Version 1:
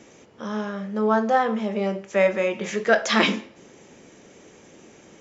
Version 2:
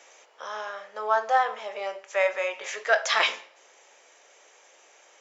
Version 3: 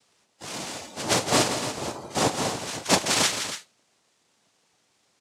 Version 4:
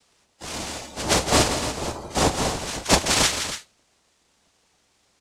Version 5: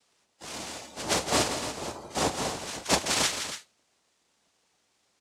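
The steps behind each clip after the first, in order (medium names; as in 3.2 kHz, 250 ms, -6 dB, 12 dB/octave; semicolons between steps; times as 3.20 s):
in parallel at -3 dB: gain riding within 4 dB 2 s; on the sum: high-pass 610 Hz 24 dB/octave; trim -5.5 dB
noise-vocoded speech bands 2; loudspeakers at several distances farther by 57 m -9 dB, 97 m -11 dB; spectral noise reduction 12 dB
octave divider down 2 oct, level -2 dB; trim +2.5 dB
high-pass 160 Hz 6 dB/octave; trim -6 dB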